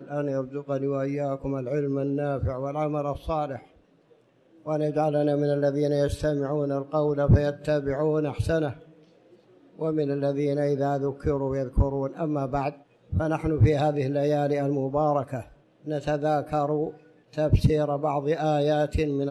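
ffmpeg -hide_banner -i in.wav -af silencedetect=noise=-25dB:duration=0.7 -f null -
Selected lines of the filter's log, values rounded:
silence_start: 3.56
silence_end: 4.68 | silence_duration: 1.12
silence_start: 8.69
silence_end: 9.82 | silence_duration: 1.13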